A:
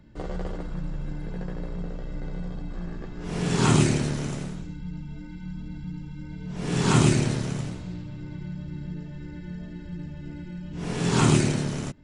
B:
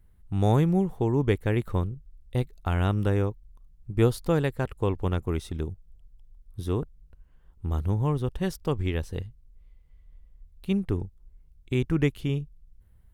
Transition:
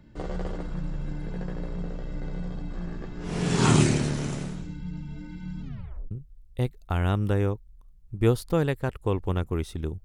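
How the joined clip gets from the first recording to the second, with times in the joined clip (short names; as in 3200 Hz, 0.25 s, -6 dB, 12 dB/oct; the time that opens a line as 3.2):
A
5.62 tape stop 0.49 s
6.11 switch to B from 1.87 s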